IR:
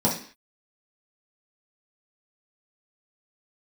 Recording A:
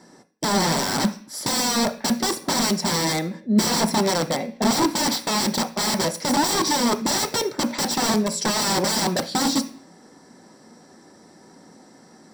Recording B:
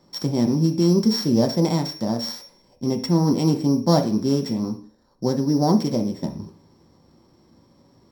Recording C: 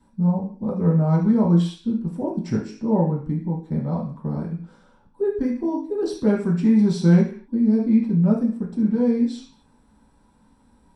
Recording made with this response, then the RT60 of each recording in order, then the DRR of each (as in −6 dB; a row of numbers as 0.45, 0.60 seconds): C; 0.45, 0.45, 0.45 seconds; 7.5, 3.0, −6.0 decibels